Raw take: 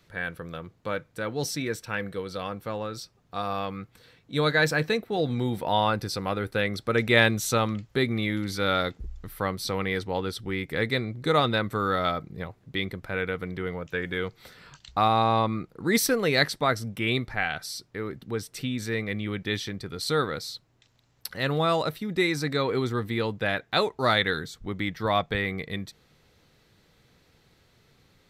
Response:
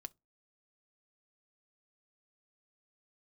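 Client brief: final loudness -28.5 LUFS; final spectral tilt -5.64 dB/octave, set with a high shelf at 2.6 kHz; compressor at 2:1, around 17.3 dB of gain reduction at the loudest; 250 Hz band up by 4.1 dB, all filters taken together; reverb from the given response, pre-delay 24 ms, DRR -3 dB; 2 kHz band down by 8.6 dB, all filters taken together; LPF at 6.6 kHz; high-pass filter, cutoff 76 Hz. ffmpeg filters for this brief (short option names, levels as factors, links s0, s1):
-filter_complex "[0:a]highpass=76,lowpass=6600,equalizer=f=250:t=o:g=5.5,equalizer=f=2000:t=o:g=-7.5,highshelf=f=2600:g=-8.5,acompressor=threshold=0.00398:ratio=2,asplit=2[s0][s1];[1:a]atrim=start_sample=2205,adelay=24[s2];[s1][s2]afir=irnorm=-1:irlink=0,volume=2.66[s3];[s0][s3]amix=inputs=2:normalize=0,volume=2.66"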